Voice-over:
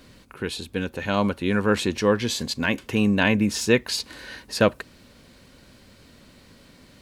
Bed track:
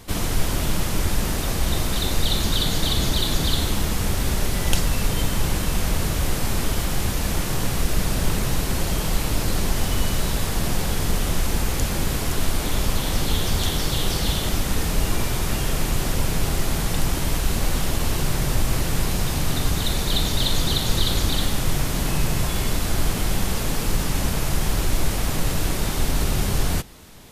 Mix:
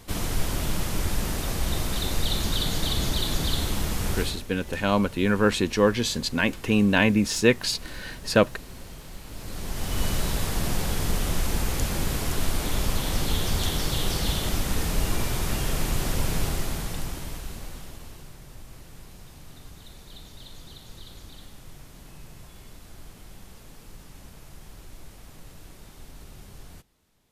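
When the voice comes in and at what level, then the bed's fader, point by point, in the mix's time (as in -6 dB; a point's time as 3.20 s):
3.75 s, 0.0 dB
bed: 4.21 s -4.5 dB
4.45 s -19.5 dB
9.22 s -19.5 dB
10.04 s -3.5 dB
16.40 s -3.5 dB
18.38 s -23.5 dB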